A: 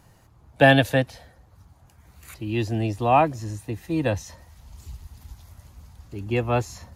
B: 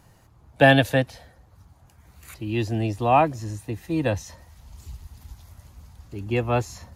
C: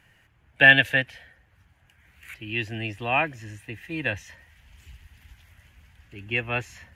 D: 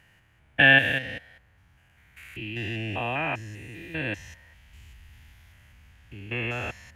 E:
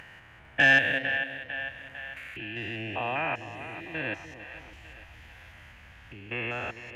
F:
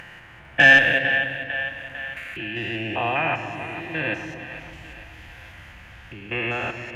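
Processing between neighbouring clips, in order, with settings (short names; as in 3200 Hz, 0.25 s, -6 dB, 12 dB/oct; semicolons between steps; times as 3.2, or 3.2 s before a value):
nothing audible
band shelf 2200 Hz +15.5 dB 1.3 oct; gain -8.5 dB
stepped spectrum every 0.2 s; gain +1.5 dB
upward compressor, threshold -35 dBFS; split-band echo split 540 Hz, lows 0.297 s, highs 0.45 s, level -12 dB; overdrive pedal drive 10 dB, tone 1700 Hz, clips at -4 dBFS; gain -3 dB
shoebox room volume 2700 m³, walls mixed, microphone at 0.86 m; gain +6 dB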